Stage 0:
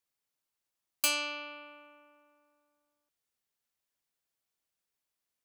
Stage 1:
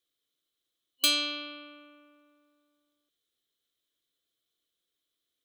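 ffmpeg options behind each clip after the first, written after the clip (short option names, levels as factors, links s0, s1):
-af "superequalizer=6b=2.51:7b=2:9b=0.251:13b=3.98"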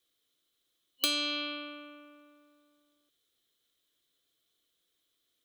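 -filter_complex "[0:a]acrossover=split=580|1400|5600[s0][s1][s2][s3];[s0]acompressor=threshold=0.00562:ratio=4[s4];[s1]acompressor=threshold=0.00355:ratio=4[s5];[s2]acompressor=threshold=0.0141:ratio=4[s6];[s3]acompressor=threshold=0.00891:ratio=4[s7];[s4][s5][s6][s7]amix=inputs=4:normalize=0,volume=1.88"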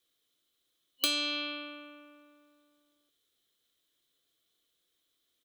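-filter_complex "[0:a]asplit=2[s0][s1];[s1]adelay=25,volume=0.251[s2];[s0][s2]amix=inputs=2:normalize=0"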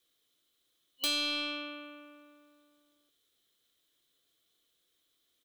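-af "asoftclip=type=tanh:threshold=0.0422,volume=1.26"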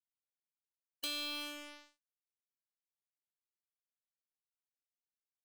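-af "acrusher=bits=5:mix=0:aa=0.5,volume=0.398"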